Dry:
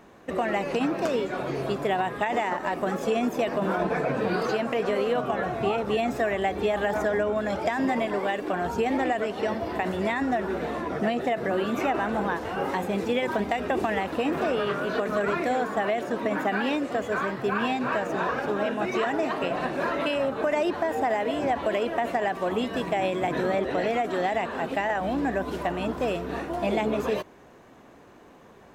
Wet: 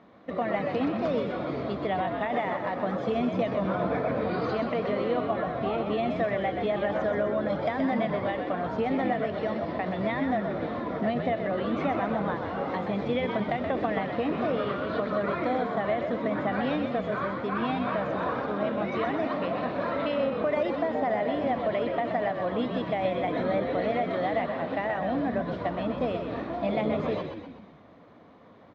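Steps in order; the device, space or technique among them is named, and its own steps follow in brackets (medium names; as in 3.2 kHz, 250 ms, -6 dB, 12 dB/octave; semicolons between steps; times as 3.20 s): frequency-shifting delay pedal into a guitar cabinet (frequency-shifting echo 126 ms, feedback 52%, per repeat -57 Hz, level -6 dB; cabinet simulation 98–3800 Hz, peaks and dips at 140 Hz -4 dB, 380 Hz -9 dB, 870 Hz -6 dB, 1.6 kHz -8 dB, 2.7 kHz -10 dB)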